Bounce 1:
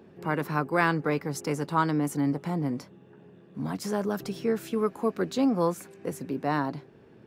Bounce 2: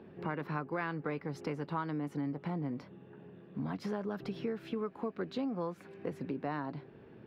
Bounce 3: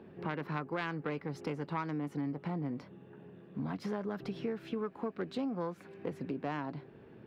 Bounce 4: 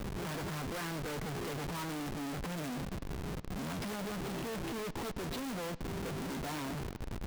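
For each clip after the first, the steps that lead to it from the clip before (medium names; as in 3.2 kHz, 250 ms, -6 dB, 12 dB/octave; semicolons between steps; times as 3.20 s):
distance through air 370 m; compression 5:1, threshold -34 dBFS, peak gain reduction 13 dB; treble shelf 2.8 kHz +9.5 dB
self-modulated delay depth 0.094 ms
modulation noise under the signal 14 dB; Schmitt trigger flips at -48 dBFS; bucket-brigade echo 109 ms, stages 4096, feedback 73%, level -22 dB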